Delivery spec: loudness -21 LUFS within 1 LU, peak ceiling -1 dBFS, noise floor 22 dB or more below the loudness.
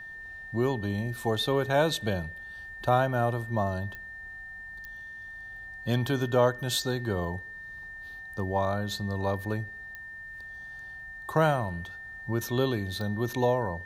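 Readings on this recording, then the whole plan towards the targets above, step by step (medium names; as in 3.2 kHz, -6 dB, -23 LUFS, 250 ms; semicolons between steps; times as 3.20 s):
clicks found 4; steady tone 1.8 kHz; tone level -40 dBFS; loudness -29.0 LUFS; peak level -9.5 dBFS; loudness target -21.0 LUFS
-> de-click; band-stop 1.8 kHz, Q 30; trim +8 dB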